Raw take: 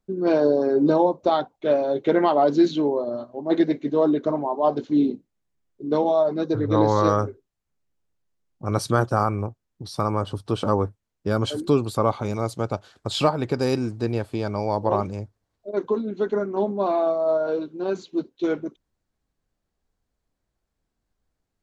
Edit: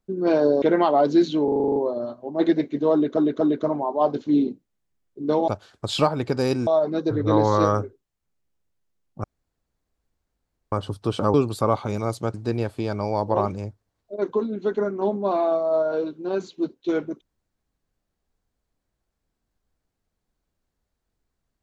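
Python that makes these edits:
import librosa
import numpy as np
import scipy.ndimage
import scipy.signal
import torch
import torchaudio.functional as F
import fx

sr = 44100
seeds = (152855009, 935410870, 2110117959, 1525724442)

y = fx.edit(x, sr, fx.cut(start_s=0.62, length_s=1.43),
    fx.stutter(start_s=2.87, slice_s=0.04, count=9),
    fx.stutter(start_s=4.04, slice_s=0.24, count=3),
    fx.room_tone_fill(start_s=8.68, length_s=1.48),
    fx.cut(start_s=10.78, length_s=0.92),
    fx.move(start_s=12.7, length_s=1.19, to_s=6.11), tone=tone)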